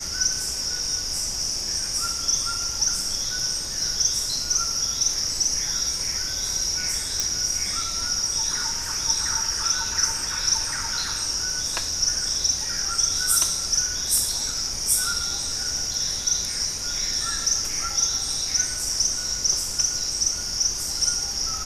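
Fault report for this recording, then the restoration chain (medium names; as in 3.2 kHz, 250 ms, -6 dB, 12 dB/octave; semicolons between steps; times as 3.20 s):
7.20 s: pop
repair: de-click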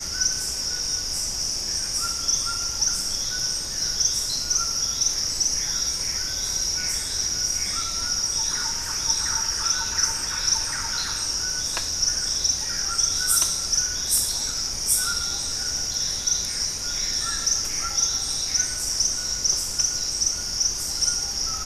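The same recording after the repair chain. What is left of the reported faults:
nothing left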